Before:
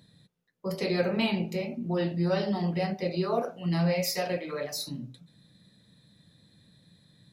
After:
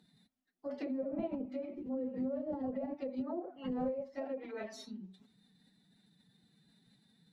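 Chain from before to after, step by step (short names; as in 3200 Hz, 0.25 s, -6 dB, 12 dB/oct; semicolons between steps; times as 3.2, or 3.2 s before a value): treble ducked by the level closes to 520 Hz, closed at -24 dBFS; formant-preserving pitch shift +7 st; gain -8 dB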